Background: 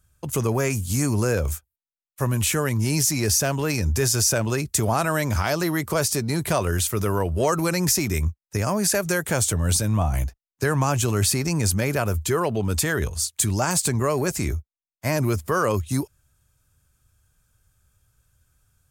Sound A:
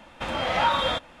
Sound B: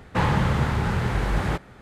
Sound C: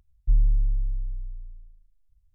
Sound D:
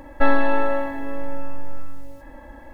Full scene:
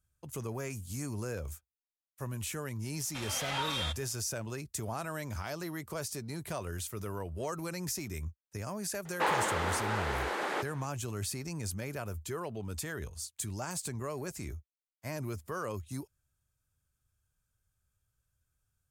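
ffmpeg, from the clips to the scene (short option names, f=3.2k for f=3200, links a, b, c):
-filter_complex "[0:a]volume=-15.5dB[a];[1:a]crystalizer=i=7:c=0[b];[2:a]highpass=f=340:w=0.5412,highpass=f=340:w=1.3066[c];[b]atrim=end=1.2,asetpts=PTS-STARTPTS,volume=-17.5dB,afade=t=in:d=0.004:c=hsin,afade=t=out:st=1.196:d=0.004:c=hsin,adelay=2940[d];[c]atrim=end=1.81,asetpts=PTS-STARTPTS,volume=-3.5dB,afade=t=in:d=0.004:c=hsin,afade=t=out:st=1.806:d=0.004:c=hsin,adelay=9050[e];[a][d][e]amix=inputs=3:normalize=0"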